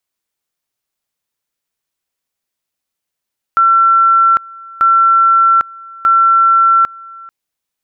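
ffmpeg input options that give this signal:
-f lavfi -i "aevalsrc='pow(10,(-6-24*gte(mod(t,1.24),0.8))/20)*sin(2*PI*1350*t)':d=3.72:s=44100"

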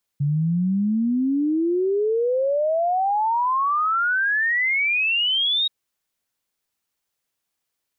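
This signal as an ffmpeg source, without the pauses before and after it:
-f lavfi -i "aevalsrc='0.126*clip(min(t,5.48-t)/0.01,0,1)*sin(2*PI*140*5.48/log(3800/140)*(exp(log(3800/140)*t/5.48)-1))':d=5.48:s=44100"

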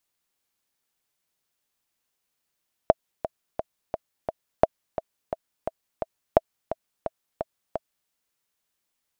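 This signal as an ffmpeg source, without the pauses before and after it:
-f lavfi -i "aevalsrc='pow(10,(-1.5-12.5*gte(mod(t,5*60/173),60/173))/20)*sin(2*PI*648*mod(t,60/173))*exp(-6.91*mod(t,60/173)/0.03)':d=5.2:s=44100"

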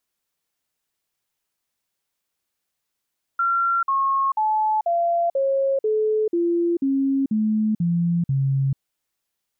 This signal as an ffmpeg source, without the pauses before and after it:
-f lavfi -i "aevalsrc='0.133*clip(min(mod(t,0.49),0.44-mod(t,0.49))/0.005,0,1)*sin(2*PI*1370*pow(2,-floor(t/0.49)/3)*mod(t,0.49))':d=5.39:s=44100"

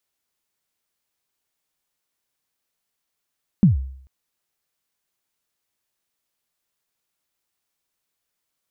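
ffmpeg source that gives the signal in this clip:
-f lavfi -i "aevalsrc='0.447*pow(10,-3*t/0.63)*sin(2*PI*(220*0.135/log(66/220)*(exp(log(66/220)*min(t,0.135)/0.135)-1)+66*max(t-0.135,0)))':d=0.44:s=44100"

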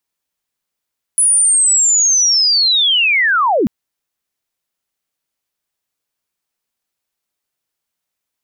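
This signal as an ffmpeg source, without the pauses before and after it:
-f lavfi -i "aevalsrc='pow(10,(-8.5-2*t/2.49)/20)*sin(2*PI*(10000*t-9820*t*t/(2*2.49)))':d=2.49:s=44100"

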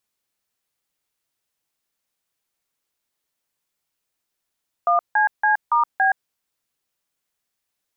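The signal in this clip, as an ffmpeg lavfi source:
-f lavfi -i "aevalsrc='0.141*clip(min(mod(t,0.282),0.121-mod(t,0.282))/0.002,0,1)*(eq(floor(t/0.282),0)*(sin(2*PI*697*mod(t,0.282))+sin(2*PI*1209*mod(t,0.282)))+eq(floor(t/0.282),1)*(sin(2*PI*852*mod(t,0.282))+sin(2*PI*1633*mod(t,0.282)))+eq(floor(t/0.282),2)*(sin(2*PI*852*mod(t,0.282))+sin(2*PI*1633*mod(t,0.282)))+eq(floor(t/0.282),3)*(sin(2*PI*941*mod(t,0.282))+sin(2*PI*1209*mod(t,0.282)))+eq(floor(t/0.282),4)*(sin(2*PI*770*mod(t,0.282))+sin(2*PI*1633*mod(t,0.282))))':d=1.41:s=44100"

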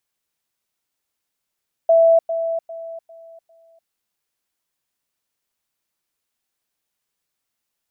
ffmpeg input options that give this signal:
-f lavfi -i "aevalsrc='pow(10,(-9.5-10*floor(t/0.4))/20)*sin(2*PI*661*t)*clip(min(mod(t,0.4),0.3-mod(t,0.4))/0.005,0,1)':d=2:s=44100"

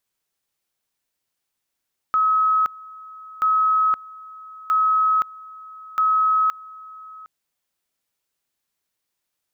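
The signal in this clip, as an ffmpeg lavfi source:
-f lavfi -i "aevalsrc='pow(10,(-15-22*gte(mod(t,1.28),0.52))/20)*sin(2*PI*1280*t)':d=5.12:s=44100"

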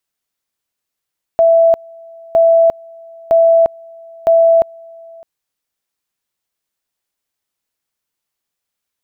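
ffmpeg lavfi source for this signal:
-f lavfi -i "aevalsrc='pow(10,(-6-27.5*gte(mod(t,0.96),0.35))/20)*sin(2*PI*663*t)':d=3.84:s=44100"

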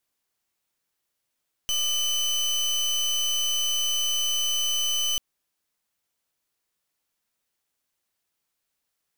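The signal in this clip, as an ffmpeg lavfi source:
-f lavfi -i "aevalsrc='0.0562*(2*lt(mod(3020*t,1),0.29)-1)':d=3.49:s=44100"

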